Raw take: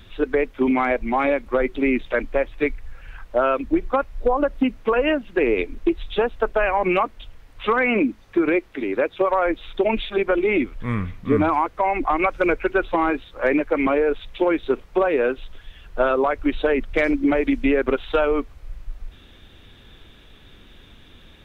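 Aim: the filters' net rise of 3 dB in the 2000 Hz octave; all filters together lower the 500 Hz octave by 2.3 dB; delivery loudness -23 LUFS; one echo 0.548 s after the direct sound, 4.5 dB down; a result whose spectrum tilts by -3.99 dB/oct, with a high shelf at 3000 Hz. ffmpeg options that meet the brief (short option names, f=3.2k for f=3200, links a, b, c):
-af "equalizer=f=500:t=o:g=-3,equalizer=f=2k:t=o:g=6,highshelf=f=3k:g=-5.5,aecho=1:1:548:0.596,volume=-1.5dB"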